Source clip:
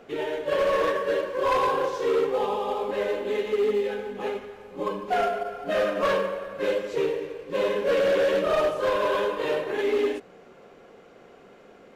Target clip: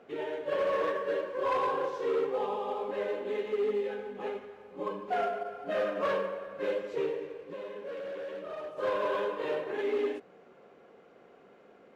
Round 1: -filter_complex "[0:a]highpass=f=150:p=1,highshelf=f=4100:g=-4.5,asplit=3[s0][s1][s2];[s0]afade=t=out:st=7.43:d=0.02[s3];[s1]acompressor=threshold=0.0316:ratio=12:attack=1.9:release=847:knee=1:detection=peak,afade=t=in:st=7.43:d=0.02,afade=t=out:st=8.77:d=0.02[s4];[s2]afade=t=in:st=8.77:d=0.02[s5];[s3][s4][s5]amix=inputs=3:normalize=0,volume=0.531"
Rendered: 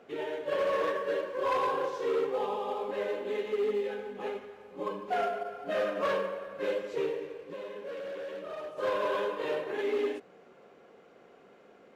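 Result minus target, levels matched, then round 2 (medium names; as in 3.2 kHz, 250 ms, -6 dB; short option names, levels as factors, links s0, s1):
8 kHz band +4.5 dB
-filter_complex "[0:a]highpass=f=150:p=1,highshelf=f=4100:g=-11,asplit=3[s0][s1][s2];[s0]afade=t=out:st=7.43:d=0.02[s3];[s1]acompressor=threshold=0.0316:ratio=12:attack=1.9:release=847:knee=1:detection=peak,afade=t=in:st=7.43:d=0.02,afade=t=out:st=8.77:d=0.02[s4];[s2]afade=t=in:st=8.77:d=0.02[s5];[s3][s4][s5]amix=inputs=3:normalize=0,volume=0.531"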